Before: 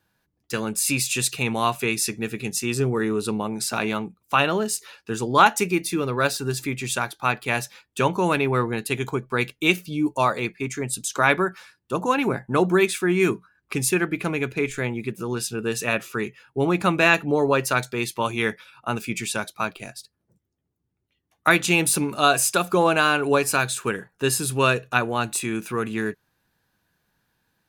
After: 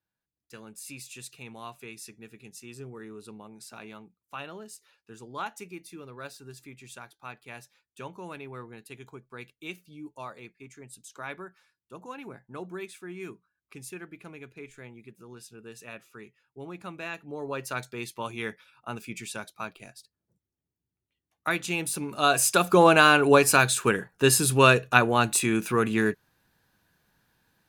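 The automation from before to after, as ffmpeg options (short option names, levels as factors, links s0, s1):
-af "volume=1.26,afade=t=in:st=17.22:d=0.61:silence=0.334965,afade=t=in:st=22:d=0.84:silence=0.251189"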